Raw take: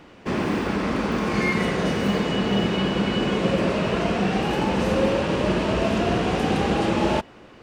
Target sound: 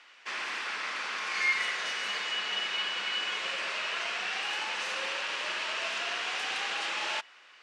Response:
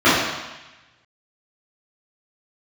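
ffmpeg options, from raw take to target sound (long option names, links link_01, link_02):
-af "asuperpass=centerf=3600:order=4:qfactor=0.55"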